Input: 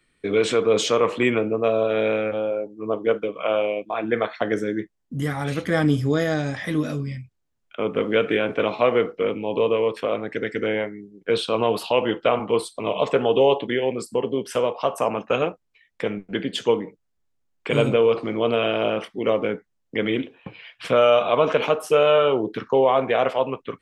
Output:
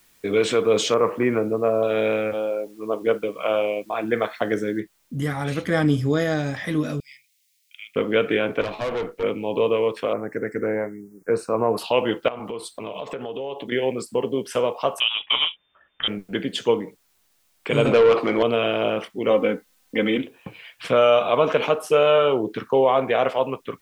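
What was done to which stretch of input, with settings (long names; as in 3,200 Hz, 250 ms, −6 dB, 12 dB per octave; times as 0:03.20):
0:00.94–0:01.83: low-pass filter 1,900 Hz 24 dB per octave
0:02.33–0:03.02: parametric band 120 Hz −9.5 dB 1.2 octaves
0:04.80: noise floor change −59 dB −66 dB
0:07.00–0:07.96: elliptic high-pass filter 2,100 Hz, stop band 50 dB
0:08.61–0:09.23: tube saturation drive 22 dB, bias 0.55
0:10.13–0:11.78: Butterworth band-reject 3,300 Hz, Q 0.78
0:12.28–0:13.72: downward compressor, threshold −28 dBFS
0:15.00–0:16.08: voice inversion scrambler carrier 3,600 Hz
0:17.85–0:18.43: mid-hump overdrive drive 18 dB, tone 2,400 Hz, clips at −7.5 dBFS
0:19.30–0:20.18: comb filter 3.9 ms, depth 81%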